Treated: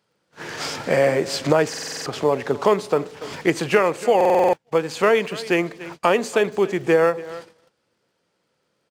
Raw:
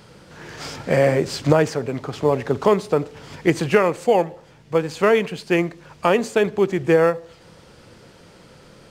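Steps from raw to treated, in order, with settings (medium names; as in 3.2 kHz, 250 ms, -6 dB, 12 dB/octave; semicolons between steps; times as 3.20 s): on a send: feedback delay 285 ms, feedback 27%, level -20 dB; on the sum: crackle 31 per s -41 dBFS; in parallel at +2.5 dB: compression, threshold -30 dBFS, peak gain reduction 18.5 dB; on the sum: high-pass 310 Hz 6 dB/octave; gate -35 dBFS, range -28 dB; buffer glitch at 1.69/4.16 s, samples 2048, times 7; trim -1 dB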